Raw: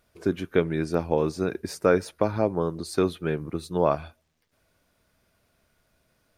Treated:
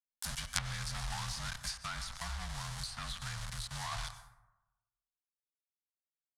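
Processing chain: frequency-shifting echo 121 ms, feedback 60%, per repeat -150 Hz, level -24 dB; FFT band-reject 280–710 Hz; companded quantiser 2-bit; frequency shift -37 Hz; amplifier tone stack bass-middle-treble 10-0-10; plate-style reverb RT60 1 s, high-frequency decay 0.4×, pre-delay 80 ms, DRR 11.5 dB; low-pass that closes with the level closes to 780 Hz, closed at -23 dBFS; fifteen-band graphic EQ 400 Hz -12 dB, 2.5 kHz -7 dB, 10 kHz +8 dB; 1.83–3.92 s: compression, threshold -35 dBFS, peak gain reduction 3.5 dB; trim -1 dB

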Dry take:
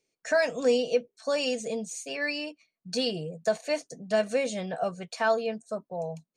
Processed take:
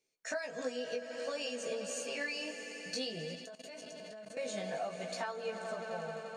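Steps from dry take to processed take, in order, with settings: fade out at the end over 0.51 s; bass shelf 470 Hz -5.5 dB; on a send: echo with a slow build-up 87 ms, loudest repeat 5, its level -17.5 dB; on the sum: compression 16:1, threshold -31 dBFS, peak gain reduction 11 dB; chorus 0.55 Hz, delay 15.5 ms, depth 4.7 ms; 3.35–4.37 s: level held to a coarse grid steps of 16 dB

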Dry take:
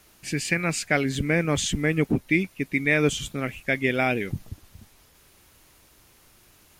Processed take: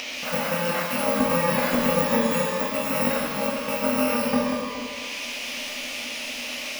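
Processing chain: bit-reversed sample order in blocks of 128 samples; peak limiter -13.5 dBFS, peak gain reduction 5.5 dB; small resonant body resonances 250/580 Hz, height 18 dB, ringing for 35 ms; band noise 2.5–6.6 kHz -39 dBFS; graphic EQ 125/250/500/1000/2000/4000/8000 Hz -11/+10/+6/+11/+12/-7/-11 dB; upward compressor, threshold -18 dBFS; bass shelf 360 Hz -4.5 dB; pitch-shifted reverb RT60 1.3 s, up +12 st, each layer -8 dB, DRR -2.5 dB; trim -7.5 dB

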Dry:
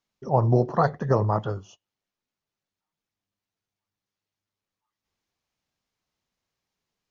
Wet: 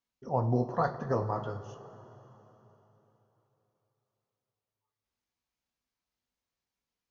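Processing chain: two-slope reverb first 0.24 s, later 3.7 s, from -18 dB, DRR 4 dB; trim -8.5 dB

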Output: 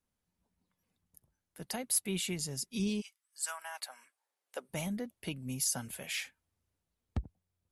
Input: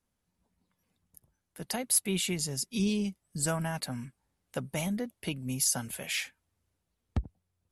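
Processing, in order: 3.00–4.69 s: high-pass 1.4 kHz -> 350 Hz 24 dB/octave; trim -4.5 dB

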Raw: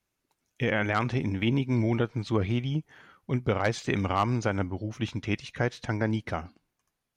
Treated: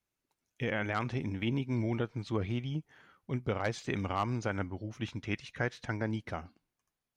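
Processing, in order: 4.49–5.96 s: dynamic bell 1.7 kHz, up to +5 dB, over -44 dBFS, Q 1.4; trim -6.5 dB

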